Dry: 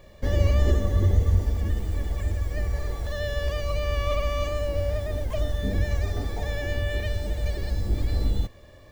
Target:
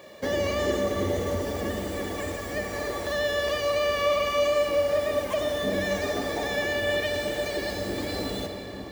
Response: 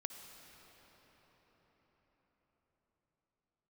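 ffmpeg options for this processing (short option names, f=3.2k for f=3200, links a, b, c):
-filter_complex "[0:a]highpass=280,asplit=2[a][b];[b]alimiter=level_in=4dB:limit=-24dB:level=0:latency=1:release=131,volume=-4dB,volume=3dB[c];[a][c]amix=inputs=2:normalize=0[d];[1:a]atrim=start_sample=2205[e];[d][e]afir=irnorm=-1:irlink=0,volume=3dB"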